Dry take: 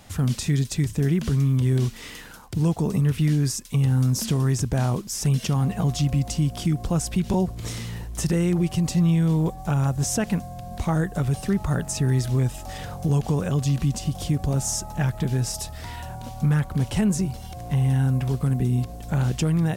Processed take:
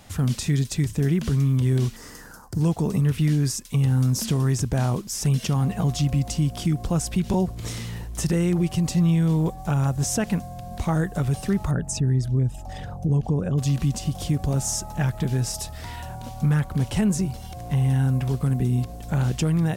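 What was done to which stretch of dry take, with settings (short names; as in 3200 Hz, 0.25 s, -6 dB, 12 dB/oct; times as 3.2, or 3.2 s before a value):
1.96–2.61 band shelf 2900 Hz -14 dB 1.1 oct
11.71–13.58 formant sharpening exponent 1.5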